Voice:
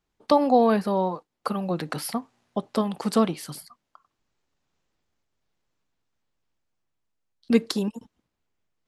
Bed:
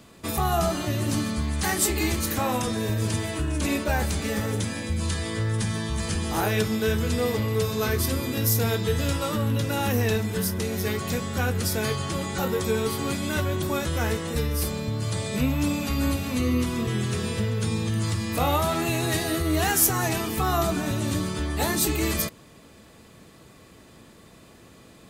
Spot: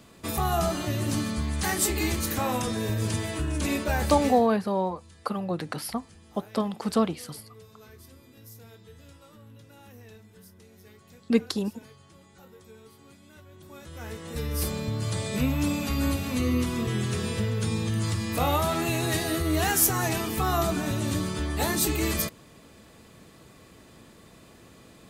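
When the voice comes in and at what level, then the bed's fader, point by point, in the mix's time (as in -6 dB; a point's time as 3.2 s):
3.80 s, -2.5 dB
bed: 4.27 s -2 dB
4.54 s -25.5 dB
13.46 s -25.5 dB
14.62 s -1.5 dB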